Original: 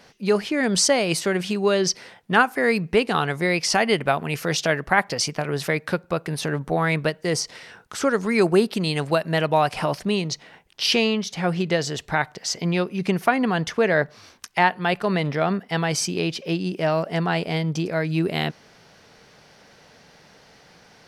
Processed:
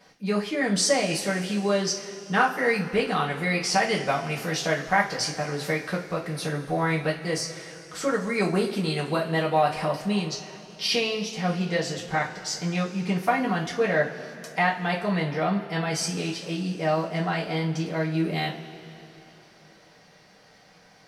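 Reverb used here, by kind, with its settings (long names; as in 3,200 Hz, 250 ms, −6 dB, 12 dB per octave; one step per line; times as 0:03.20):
coupled-rooms reverb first 0.27 s, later 3.3 s, from −20 dB, DRR −5 dB
level −9.5 dB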